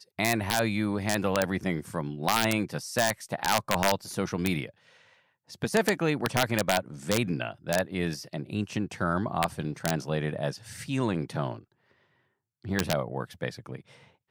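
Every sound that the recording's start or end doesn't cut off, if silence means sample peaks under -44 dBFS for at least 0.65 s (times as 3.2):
5.5–11.61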